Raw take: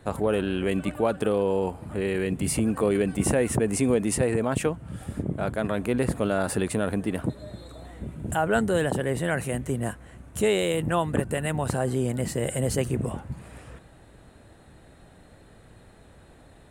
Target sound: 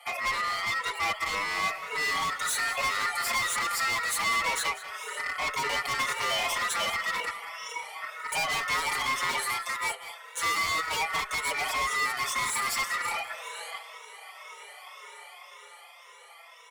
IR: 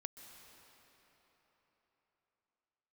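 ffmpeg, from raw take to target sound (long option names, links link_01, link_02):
-filter_complex "[0:a]afftfilt=real='re*pow(10,23/40*sin(2*PI*(1.1*log(max(b,1)*sr/1024/100)/log(2)-(1.9)*(pts-256)/sr)))':imag='im*pow(10,23/40*sin(2*PI*(1.1*log(max(b,1)*sr/1024/100)/log(2)-(1.9)*(pts-256)/sr)))':win_size=1024:overlap=0.75,acrossover=split=8800[link_01][link_02];[link_02]acompressor=threshold=-50dB:ratio=4:attack=1:release=60[link_03];[link_01][link_03]amix=inputs=2:normalize=0,highpass=370,dynaudnorm=framelen=190:gausssize=17:maxgain=6dB,aeval=exprs='val(0)*sin(2*PI*1200*n/s)':channel_layout=same,asoftclip=type=hard:threshold=-20.5dB,afreqshift=400,asoftclip=type=tanh:threshold=-29dB,aecho=1:1:194:0.168,asplit=2[link_04][link_05];[link_05]adelay=5.2,afreqshift=-0.32[link_06];[link_04][link_06]amix=inputs=2:normalize=1,volume=6dB"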